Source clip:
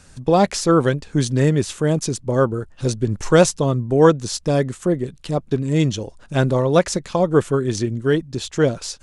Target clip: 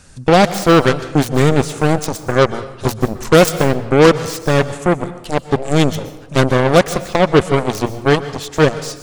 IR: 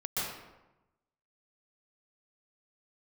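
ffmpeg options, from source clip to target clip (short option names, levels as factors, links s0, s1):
-filter_complex "[0:a]acontrast=82,aeval=exprs='1*(cos(1*acos(clip(val(0)/1,-1,1)))-cos(1*PI/2))+0.251*(cos(7*acos(clip(val(0)/1,-1,1)))-cos(7*PI/2))+0.0282*(cos(8*acos(clip(val(0)/1,-1,1)))-cos(8*PI/2))':c=same,asplit=2[s0][s1];[1:a]atrim=start_sample=2205,highshelf=f=5100:g=9.5[s2];[s1][s2]afir=irnorm=-1:irlink=0,volume=0.1[s3];[s0][s3]amix=inputs=2:normalize=0,volume=0.794"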